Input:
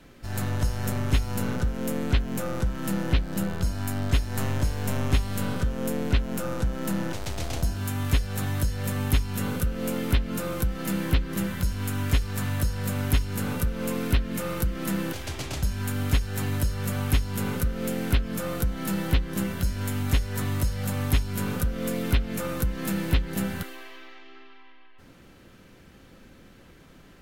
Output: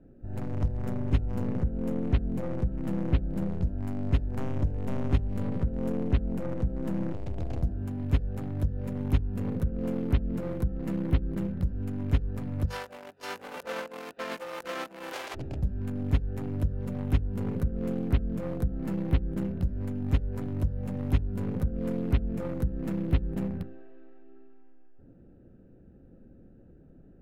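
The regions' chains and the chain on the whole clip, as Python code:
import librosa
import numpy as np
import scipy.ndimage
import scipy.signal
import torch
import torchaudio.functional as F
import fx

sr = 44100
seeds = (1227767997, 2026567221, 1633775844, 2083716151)

y = fx.envelope_flatten(x, sr, power=0.6, at=(12.65, 15.34), fade=0.02)
y = fx.highpass(y, sr, hz=610.0, slope=12, at=(12.65, 15.34), fade=0.02)
y = fx.over_compress(y, sr, threshold_db=-35.0, ratio=-0.5, at=(12.65, 15.34), fade=0.02)
y = fx.wiener(y, sr, points=41)
y = fx.lowpass(y, sr, hz=1000.0, slope=6)
y = fx.hum_notches(y, sr, base_hz=50, count=4)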